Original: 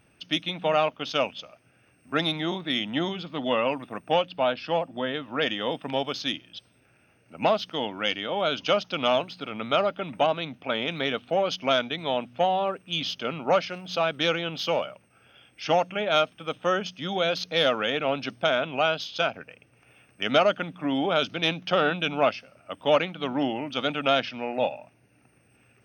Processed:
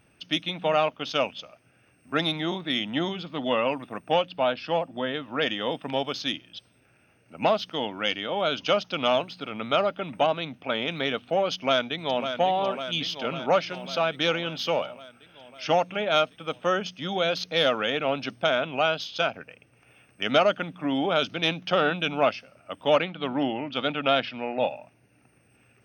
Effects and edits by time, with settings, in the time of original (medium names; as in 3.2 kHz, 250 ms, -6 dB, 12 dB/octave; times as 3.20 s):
11.54–12.23 s: echo throw 550 ms, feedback 70%, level -8 dB
22.98–24.68 s: low-pass 4.7 kHz 24 dB/octave